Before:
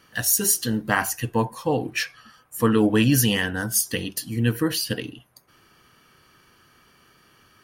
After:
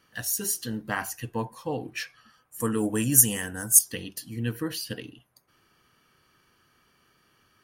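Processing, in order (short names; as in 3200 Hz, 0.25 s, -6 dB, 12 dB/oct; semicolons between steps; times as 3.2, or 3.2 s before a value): 2.6–3.79 resonant high shelf 5700 Hz +11.5 dB, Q 3; gain -8 dB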